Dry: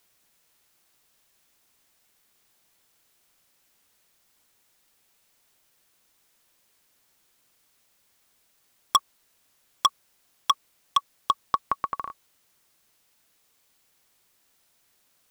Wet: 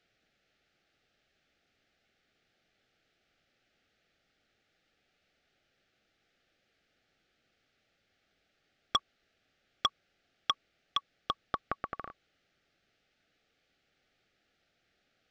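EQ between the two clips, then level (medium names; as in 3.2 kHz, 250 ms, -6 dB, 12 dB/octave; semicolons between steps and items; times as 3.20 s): Gaussian low-pass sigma 2.1 samples; Butterworth band-stop 1 kHz, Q 2.2; 0.0 dB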